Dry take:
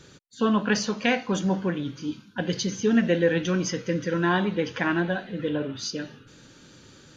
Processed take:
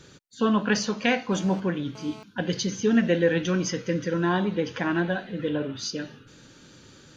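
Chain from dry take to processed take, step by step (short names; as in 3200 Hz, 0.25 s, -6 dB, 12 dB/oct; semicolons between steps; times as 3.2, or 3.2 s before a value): 1.32–2.23 GSM buzz -45 dBFS; 4–4.95 dynamic EQ 2100 Hz, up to -5 dB, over -36 dBFS, Q 0.83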